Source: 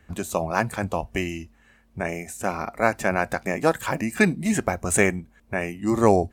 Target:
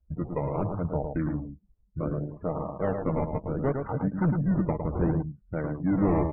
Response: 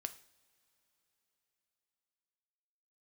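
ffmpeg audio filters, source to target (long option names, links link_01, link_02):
-filter_complex "[0:a]asplit=2[link_01][link_02];[link_02]asetrate=37084,aresample=44100,atempo=1.18921,volume=-16dB[link_03];[link_01][link_03]amix=inputs=2:normalize=0,aresample=16000,asoftclip=type=tanh:threshold=-14dB,aresample=44100,asetrate=38170,aresample=44100,atempo=1.15535,aecho=1:1:6.5:0.3,acrusher=samples=20:mix=1:aa=0.000001:lfo=1:lforange=20:lforate=0.69,lowshelf=frequency=300:gain=5.5,asoftclip=type=hard:threshold=-14.5dB,lowpass=1300,aecho=1:1:108:0.531,afftdn=noise_reduction=28:noise_floor=-37,volume=-5dB"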